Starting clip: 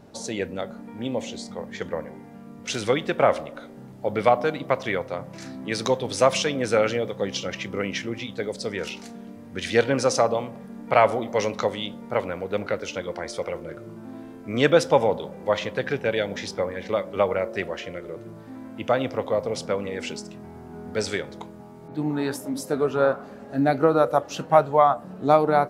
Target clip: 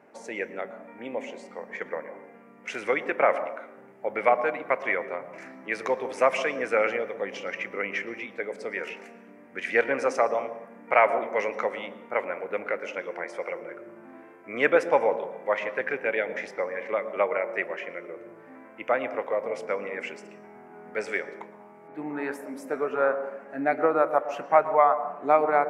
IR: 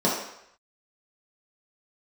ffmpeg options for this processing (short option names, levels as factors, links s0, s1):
-filter_complex "[0:a]highpass=370,highshelf=f=2900:t=q:w=3:g=-9.5,asplit=2[s0][s1];[1:a]atrim=start_sample=2205,adelay=112[s2];[s1][s2]afir=irnorm=-1:irlink=0,volume=0.0376[s3];[s0][s3]amix=inputs=2:normalize=0,volume=0.708"